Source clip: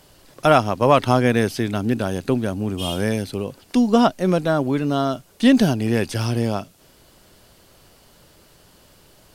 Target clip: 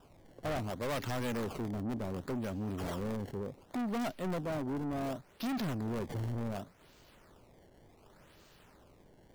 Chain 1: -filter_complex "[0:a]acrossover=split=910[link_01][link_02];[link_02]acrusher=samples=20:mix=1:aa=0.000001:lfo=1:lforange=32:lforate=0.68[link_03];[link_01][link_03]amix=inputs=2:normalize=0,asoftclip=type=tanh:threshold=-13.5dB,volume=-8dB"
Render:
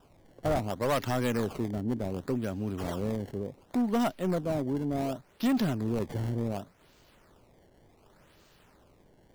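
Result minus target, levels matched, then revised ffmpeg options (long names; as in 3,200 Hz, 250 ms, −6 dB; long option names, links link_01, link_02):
soft clipping: distortion −7 dB
-filter_complex "[0:a]acrossover=split=910[link_01][link_02];[link_02]acrusher=samples=20:mix=1:aa=0.000001:lfo=1:lforange=32:lforate=0.68[link_03];[link_01][link_03]amix=inputs=2:normalize=0,asoftclip=type=tanh:threshold=-24.5dB,volume=-8dB"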